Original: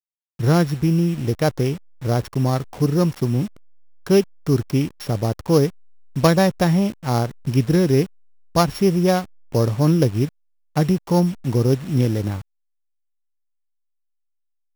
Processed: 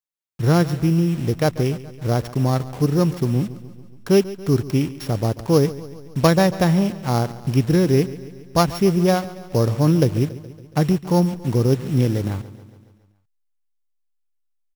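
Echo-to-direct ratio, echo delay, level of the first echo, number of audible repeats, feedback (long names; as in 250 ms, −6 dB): −15.0 dB, 140 ms, −17.0 dB, 5, 60%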